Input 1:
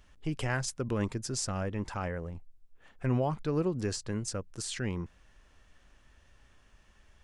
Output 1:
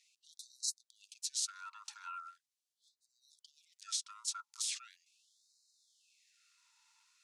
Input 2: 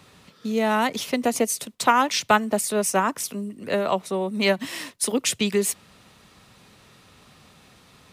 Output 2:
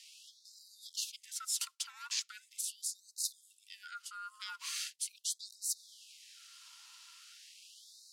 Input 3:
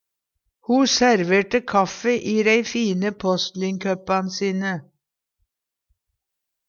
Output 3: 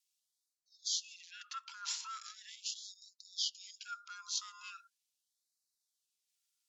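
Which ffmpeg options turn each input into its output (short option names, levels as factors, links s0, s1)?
-filter_complex "[0:a]alimiter=limit=0.15:level=0:latency=1:release=123,areverse,acompressor=threshold=0.02:ratio=16,areverse,asplit=3[s0][s1][s2];[s0]bandpass=f=530:t=q:w=8,volume=1[s3];[s1]bandpass=f=1840:t=q:w=8,volume=0.501[s4];[s2]bandpass=f=2480:t=q:w=8,volume=0.355[s5];[s3][s4][s5]amix=inputs=3:normalize=0,aexciter=amount=14.1:drive=8.2:freq=3800,aeval=exprs='val(0)*sin(2*PI*850*n/s)':c=same,afftfilt=real='re*gte(b*sr/1024,800*pow(3800/800,0.5+0.5*sin(2*PI*0.4*pts/sr)))':imag='im*gte(b*sr/1024,800*pow(3800/800,0.5+0.5*sin(2*PI*0.4*pts/sr)))':win_size=1024:overlap=0.75,volume=1.88"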